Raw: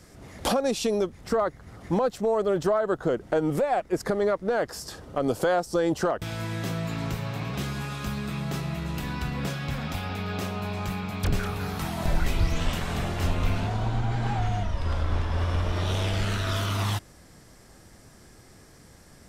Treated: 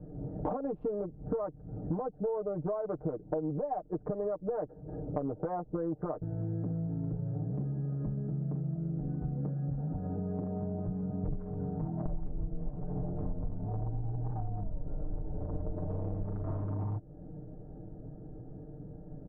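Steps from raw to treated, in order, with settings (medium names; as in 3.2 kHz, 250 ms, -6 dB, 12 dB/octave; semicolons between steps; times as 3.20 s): local Wiener filter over 41 samples; low-pass 1 kHz 24 dB/octave; comb 6.6 ms, depth 98%; compression 6:1, threshold -38 dBFS, peak gain reduction 22.5 dB; trim +5.5 dB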